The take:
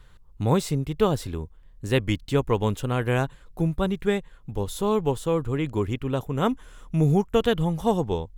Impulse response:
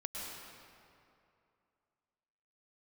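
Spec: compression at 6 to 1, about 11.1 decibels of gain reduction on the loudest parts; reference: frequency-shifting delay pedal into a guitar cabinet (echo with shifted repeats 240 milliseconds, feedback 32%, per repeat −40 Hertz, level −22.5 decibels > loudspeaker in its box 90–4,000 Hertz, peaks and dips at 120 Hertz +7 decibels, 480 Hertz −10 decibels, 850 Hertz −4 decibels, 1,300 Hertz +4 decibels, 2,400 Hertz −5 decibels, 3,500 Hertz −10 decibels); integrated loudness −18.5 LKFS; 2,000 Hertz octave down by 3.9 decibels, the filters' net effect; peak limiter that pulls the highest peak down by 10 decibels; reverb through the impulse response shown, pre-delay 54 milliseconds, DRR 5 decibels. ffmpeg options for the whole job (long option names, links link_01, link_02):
-filter_complex "[0:a]equalizer=frequency=2000:width_type=o:gain=-4,acompressor=threshold=-28dB:ratio=6,alimiter=level_in=3dB:limit=-24dB:level=0:latency=1,volume=-3dB,asplit=2[link_01][link_02];[1:a]atrim=start_sample=2205,adelay=54[link_03];[link_02][link_03]afir=irnorm=-1:irlink=0,volume=-6dB[link_04];[link_01][link_04]amix=inputs=2:normalize=0,asplit=3[link_05][link_06][link_07];[link_06]adelay=240,afreqshift=-40,volume=-22.5dB[link_08];[link_07]adelay=480,afreqshift=-80,volume=-32.4dB[link_09];[link_05][link_08][link_09]amix=inputs=3:normalize=0,highpass=90,equalizer=frequency=120:width_type=q:width=4:gain=7,equalizer=frequency=480:width_type=q:width=4:gain=-10,equalizer=frequency=850:width_type=q:width=4:gain=-4,equalizer=frequency=1300:width_type=q:width=4:gain=4,equalizer=frequency=2400:width_type=q:width=4:gain=-5,equalizer=frequency=3500:width_type=q:width=4:gain=-10,lowpass=frequency=4000:width=0.5412,lowpass=frequency=4000:width=1.3066,volume=18.5dB"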